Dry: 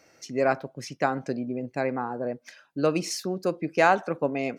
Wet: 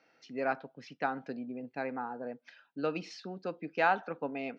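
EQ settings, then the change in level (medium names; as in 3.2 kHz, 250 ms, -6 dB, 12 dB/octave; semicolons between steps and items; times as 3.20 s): cabinet simulation 240–3900 Hz, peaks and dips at 360 Hz -9 dB, 590 Hz -8 dB, 2.1 kHz -5 dB; band-stop 1.1 kHz, Q 8.7; -4.5 dB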